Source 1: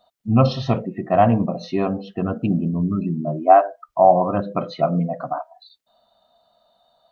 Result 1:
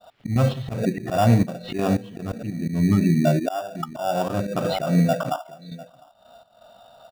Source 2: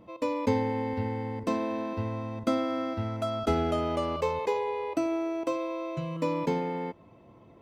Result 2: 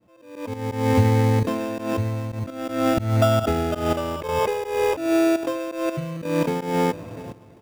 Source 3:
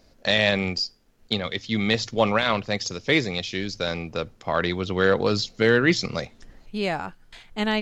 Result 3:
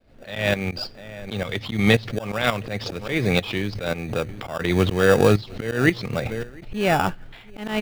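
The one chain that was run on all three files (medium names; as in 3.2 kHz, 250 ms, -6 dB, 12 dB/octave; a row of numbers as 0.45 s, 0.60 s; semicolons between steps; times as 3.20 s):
fade-in on the opening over 0.75 s; peaking EQ 110 Hz +6.5 dB 0.64 oct; echo from a far wall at 120 m, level -26 dB; trance gate "..x.xxxx..x" 84 bpm -12 dB; low-pass 3.4 kHz 24 dB/octave; band-stop 1 kHz, Q 12; in parallel at -7 dB: sample-and-hold 21×; on the sum: bass shelf 450 Hz -3 dB; compression 2.5:1, threshold -30 dBFS; slow attack 194 ms; swell ahead of each attack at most 98 dB/s; normalise loudness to -23 LUFS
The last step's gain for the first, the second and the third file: +11.5 dB, +14.5 dB, +14.0 dB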